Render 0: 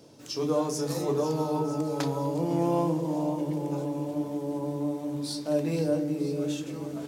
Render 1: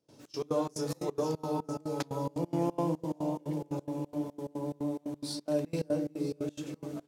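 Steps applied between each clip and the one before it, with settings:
gate pattern ".xx.x.xx" 178 BPM −24 dB
level −3.5 dB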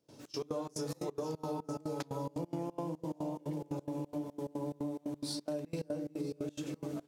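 downward compressor, threshold −36 dBFS, peak gain reduction 11 dB
level +1.5 dB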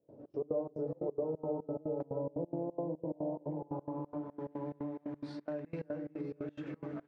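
low-pass filter sweep 580 Hz → 1,800 Hz, 0:03.24–0:04.54
level −2.5 dB

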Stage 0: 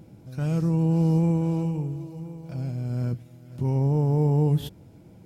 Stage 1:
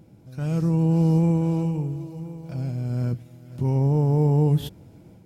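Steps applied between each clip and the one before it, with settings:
automatic gain control gain up to 5 dB
level −3 dB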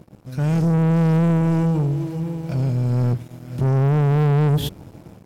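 leveller curve on the samples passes 3
level −2 dB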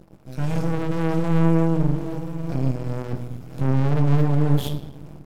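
rectangular room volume 320 cubic metres, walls mixed, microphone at 0.66 metres
half-wave rectification
level −1 dB

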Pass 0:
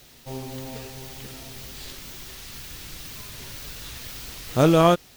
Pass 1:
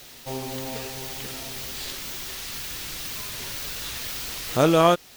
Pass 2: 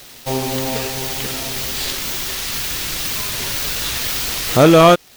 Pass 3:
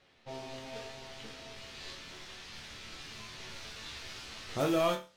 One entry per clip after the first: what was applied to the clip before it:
low-shelf EQ 260 Hz −8.5 dB; in parallel at +1 dB: downward compressor, threshold −34 dBFS, peak gain reduction 18.5 dB
leveller curve on the samples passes 2; level +3.5 dB
resonators tuned to a chord D2 major, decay 0.33 s; low-pass that shuts in the quiet parts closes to 2,600 Hz, open at −21 dBFS; level −8 dB

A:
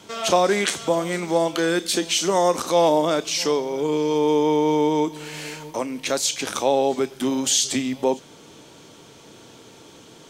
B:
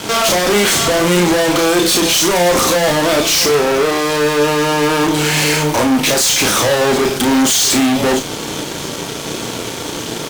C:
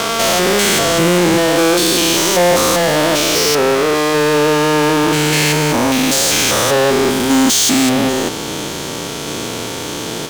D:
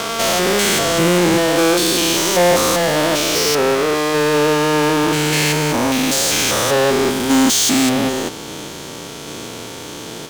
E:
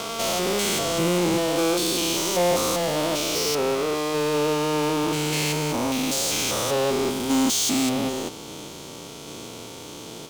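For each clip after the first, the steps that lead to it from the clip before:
fuzz pedal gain 40 dB, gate −49 dBFS; double-tracking delay 34 ms −5.5 dB
spectrum averaged block by block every 200 ms; level +2 dB
expander for the loud parts 1.5 to 1, over −23 dBFS; level −1 dB
parametric band 1,700 Hz −8.5 dB 0.42 octaves; level −7.5 dB

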